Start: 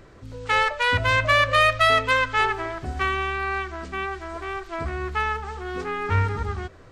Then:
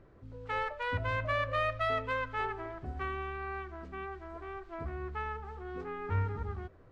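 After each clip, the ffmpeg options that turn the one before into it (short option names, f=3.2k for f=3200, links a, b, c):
-af "lowpass=f=1k:p=1,volume=-9dB"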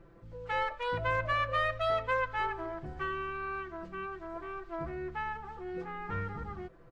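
-af "aecho=1:1:5.9:0.97,volume=-1dB"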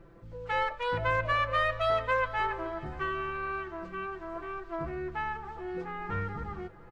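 -af "aecho=1:1:421|842|1263|1684|2105:0.106|0.0625|0.0369|0.0218|0.0128,volume=2.5dB"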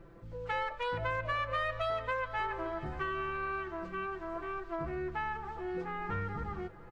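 -af "acompressor=threshold=-32dB:ratio=3"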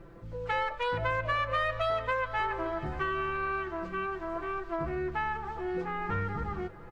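-af "volume=4dB" -ar 48000 -c:a libopus -b:a 48k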